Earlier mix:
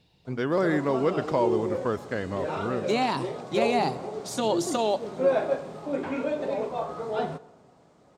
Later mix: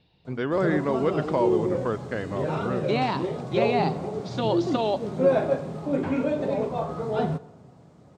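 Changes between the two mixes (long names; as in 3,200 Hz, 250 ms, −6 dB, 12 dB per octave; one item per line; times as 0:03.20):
speech: add low-pass filter 4,400 Hz 24 dB per octave
background: add parametric band 110 Hz +13.5 dB 2.3 octaves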